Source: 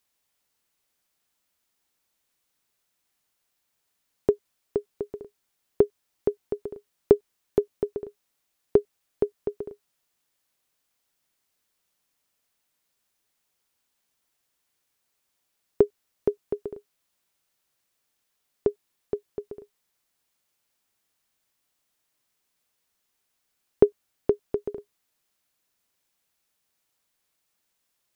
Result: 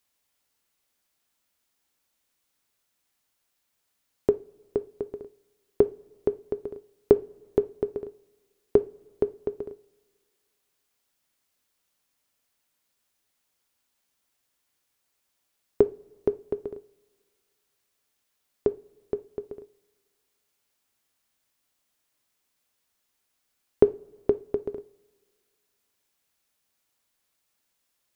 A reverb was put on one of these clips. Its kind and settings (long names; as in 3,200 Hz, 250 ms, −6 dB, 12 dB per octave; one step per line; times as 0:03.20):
coupled-rooms reverb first 0.32 s, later 1.9 s, from −22 dB, DRR 12.5 dB